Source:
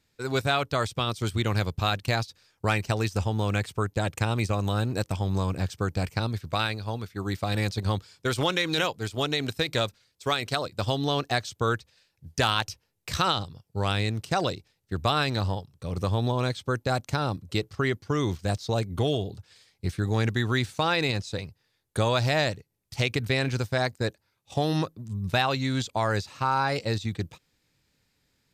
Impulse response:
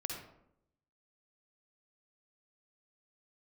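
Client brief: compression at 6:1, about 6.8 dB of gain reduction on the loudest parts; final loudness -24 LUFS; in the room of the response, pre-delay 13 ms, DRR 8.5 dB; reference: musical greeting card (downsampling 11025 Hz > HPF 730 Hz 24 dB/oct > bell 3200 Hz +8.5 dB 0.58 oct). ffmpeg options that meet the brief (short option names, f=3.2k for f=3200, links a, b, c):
-filter_complex "[0:a]acompressor=threshold=-28dB:ratio=6,asplit=2[a][b];[1:a]atrim=start_sample=2205,adelay=13[c];[b][c]afir=irnorm=-1:irlink=0,volume=-9dB[d];[a][d]amix=inputs=2:normalize=0,aresample=11025,aresample=44100,highpass=f=730:w=0.5412,highpass=f=730:w=1.3066,equalizer=f=3.2k:t=o:w=0.58:g=8.5,volume=10dB"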